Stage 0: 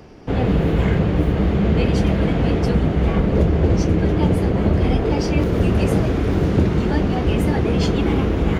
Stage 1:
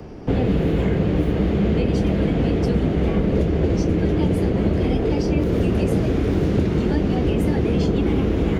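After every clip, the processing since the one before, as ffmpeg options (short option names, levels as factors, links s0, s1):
-filter_complex "[0:a]tiltshelf=f=900:g=4,acrossover=split=220|640|1700[s0][s1][s2][s3];[s0]acompressor=threshold=0.0562:ratio=4[s4];[s1]acompressor=threshold=0.0631:ratio=4[s5];[s2]acompressor=threshold=0.00631:ratio=4[s6];[s3]acompressor=threshold=0.01:ratio=4[s7];[s4][s5][s6][s7]amix=inputs=4:normalize=0,volume=1.41"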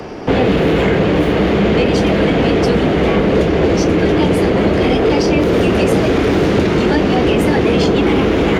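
-filter_complex "[0:a]asplit=2[s0][s1];[s1]highpass=f=720:p=1,volume=7.94,asoftclip=type=tanh:threshold=0.501[s2];[s0][s2]amix=inputs=2:normalize=0,lowpass=f=5900:p=1,volume=0.501,volume=1.58"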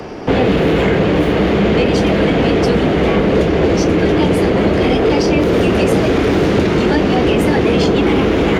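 -af anull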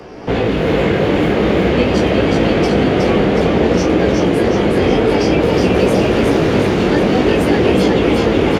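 -filter_complex "[0:a]dynaudnorm=f=120:g=3:m=3.76,flanger=delay=16:depth=4.7:speed=0.51,asplit=2[s0][s1];[s1]asplit=8[s2][s3][s4][s5][s6][s7][s8][s9];[s2]adelay=367,afreqshift=31,volume=0.708[s10];[s3]adelay=734,afreqshift=62,volume=0.412[s11];[s4]adelay=1101,afreqshift=93,volume=0.237[s12];[s5]adelay=1468,afreqshift=124,volume=0.138[s13];[s6]adelay=1835,afreqshift=155,volume=0.0804[s14];[s7]adelay=2202,afreqshift=186,volume=0.0462[s15];[s8]adelay=2569,afreqshift=217,volume=0.0269[s16];[s9]adelay=2936,afreqshift=248,volume=0.0157[s17];[s10][s11][s12][s13][s14][s15][s16][s17]amix=inputs=8:normalize=0[s18];[s0][s18]amix=inputs=2:normalize=0,volume=0.708"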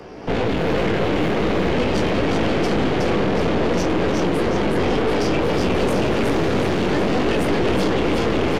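-af "aeval=exprs='(tanh(6.31*val(0)+0.7)-tanh(0.7))/6.31':c=same"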